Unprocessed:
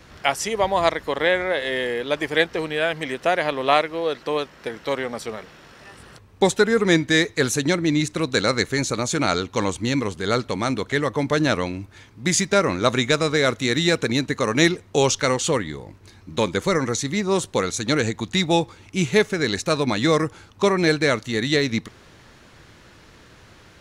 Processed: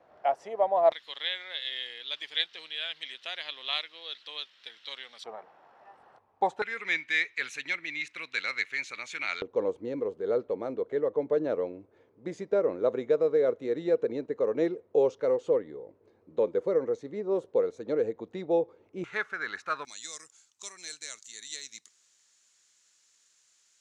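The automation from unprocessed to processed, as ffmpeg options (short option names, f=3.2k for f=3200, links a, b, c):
-af "asetnsamples=n=441:p=0,asendcmd='0.92 bandpass f 3500;5.24 bandpass f 790;6.62 bandpass f 2300;9.42 bandpass f 480;19.04 bandpass f 1400;19.85 bandpass f 7200',bandpass=f=670:t=q:w=4:csg=0"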